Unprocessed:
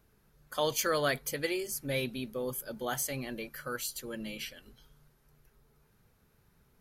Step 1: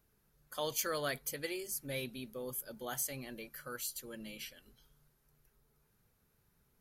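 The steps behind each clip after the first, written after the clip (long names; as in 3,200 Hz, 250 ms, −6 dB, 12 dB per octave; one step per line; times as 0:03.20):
high-shelf EQ 6,200 Hz +7 dB
level −7.5 dB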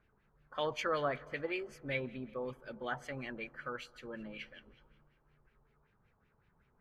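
on a send at −20.5 dB: convolution reverb RT60 2.5 s, pre-delay 81 ms
on the sum: auto-filter low-pass sine 5.3 Hz 910–2,600 Hz
level +1.5 dB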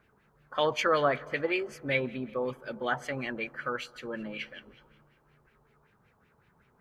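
high-pass filter 120 Hz 6 dB per octave
level +8.5 dB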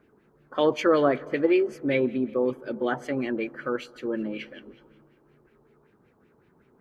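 parametric band 320 Hz +15 dB 1.4 octaves
level −2 dB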